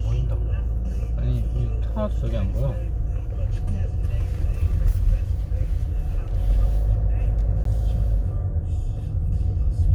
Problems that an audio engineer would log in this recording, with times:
0:07.64–0:07.65: drop-out 13 ms

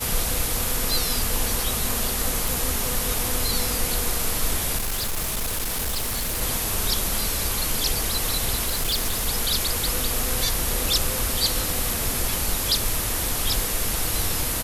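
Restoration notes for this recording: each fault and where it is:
0:02.48: click
0:04.77–0:06.42: clipping −22.5 dBFS
0:08.64–0:09.27: clipping −19.5 dBFS

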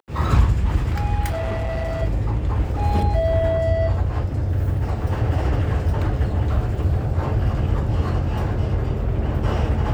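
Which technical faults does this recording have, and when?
0:01.30–0:02.03: clipping −21 dBFS

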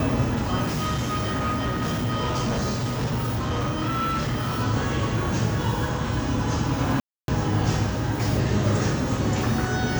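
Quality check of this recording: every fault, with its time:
0:00.62–0:04.61: clipping −21.5 dBFS
0:07.00–0:07.28: drop-out 282 ms

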